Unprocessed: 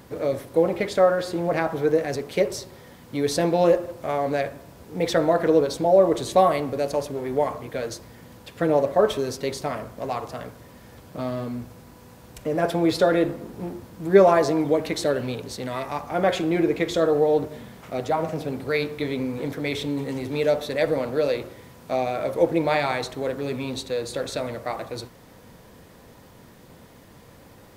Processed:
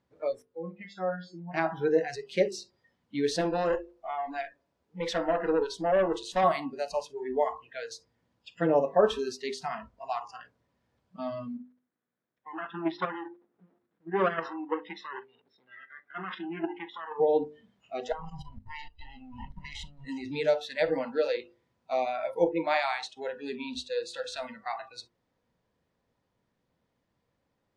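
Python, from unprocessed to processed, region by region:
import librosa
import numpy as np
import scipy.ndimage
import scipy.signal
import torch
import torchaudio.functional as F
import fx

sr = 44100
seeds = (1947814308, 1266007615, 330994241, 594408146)

y = fx.chain(x, sr, fx.high_shelf(hz=7700.0, db=-8.5),
    fx.comb_fb(f0_hz=180.0, decay_s=0.31, harmonics='all', damping=0.0, mix_pct=80), at=(0.42, 1.54))
y = fx.chain(y, sr, fx.peak_eq(hz=120.0, db=-8.0, octaves=1.2),
    fx.tube_stage(drive_db=16.0, bias=0.35), at=(3.41, 6.44))
y = fx.chain(y, sr, fx.lower_of_two(delay_ms=0.54),
    fx.bandpass_edges(low_hz=230.0, high_hz=2900.0),
    fx.level_steps(step_db=10), at=(11.57, 17.2))
y = fx.chain(y, sr, fx.lower_of_two(delay_ms=1.0),
    fx.level_steps(step_db=18),
    fx.low_shelf(hz=140.0, db=8.0), at=(18.12, 20.05))
y = fx.chain(y, sr, fx.low_shelf(hz=250.0, db=-8.0),
    fx.band_widen(depth_pct=40), at=(22.49, 23.17))
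y = scipy.signal.sosfilt(scipy.signal.butter(2, 5700.0, 'lowpass', fs=sr, output='sos'), y)
y = fx.noise_reduce_blind(y, sr, reduce_db=25)
y = fx.hum_notches(y, sr, base_hz=50, count=10)
y = y * 10.0 ** (-3.0 / 20.0)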